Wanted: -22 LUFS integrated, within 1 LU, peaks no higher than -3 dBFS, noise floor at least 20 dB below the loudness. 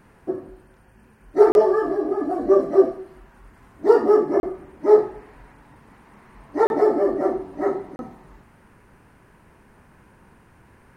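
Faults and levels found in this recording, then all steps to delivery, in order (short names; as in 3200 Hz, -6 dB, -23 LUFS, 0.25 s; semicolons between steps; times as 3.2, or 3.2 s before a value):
dropouts 4; longest dropout 31 ms; loudness -20.0 LUFS; peak -2.0 dBFS; loudness target -22.0 LUFS
-> interpolate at 1.52/4.4/6.67/7.96, 31 ms; gain -2 dB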